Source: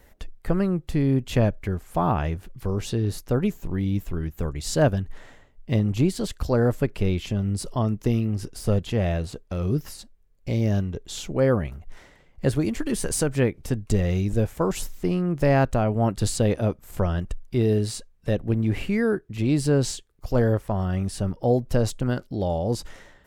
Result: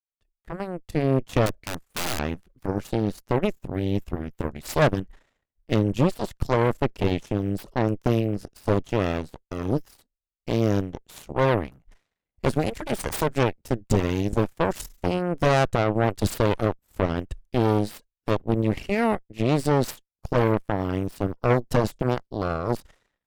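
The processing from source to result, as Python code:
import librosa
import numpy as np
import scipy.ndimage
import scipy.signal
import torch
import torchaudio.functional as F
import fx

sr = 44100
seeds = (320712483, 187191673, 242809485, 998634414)

y = fx.fade_in_head(x, sr, length_s=1.2)
y = fx.cheby_harmonics(y, sr, harmonics=(7, 8), levels_db=(-17, -16), full_scale_db=-7.0)
y = fx.overflow_wrap(y, sr, gain_db=20.0, at=(1.46, 2.19))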